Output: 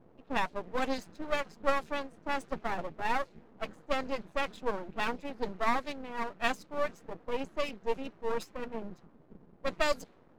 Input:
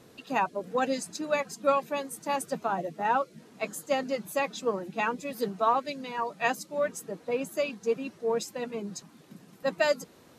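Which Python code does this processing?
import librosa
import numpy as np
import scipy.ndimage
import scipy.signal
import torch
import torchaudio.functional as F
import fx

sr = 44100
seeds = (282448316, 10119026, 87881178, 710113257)

y = fx.env_lowpass(x, sr, base_hz=670.0, full_db=-21.5)
y = np.maximum(y, 0.0)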